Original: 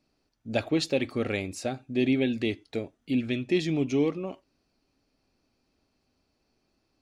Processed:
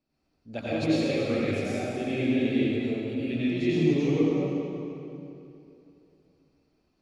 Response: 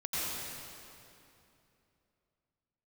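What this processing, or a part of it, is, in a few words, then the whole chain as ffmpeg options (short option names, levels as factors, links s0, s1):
swimming-pool hall: -filter_complex "[1:a]atrim=start_sample=2205[s0];[0:a][s0]afir=irnorm=-1:irlink=0,highshelf=f=4200:g=-6.5,volume=0.562"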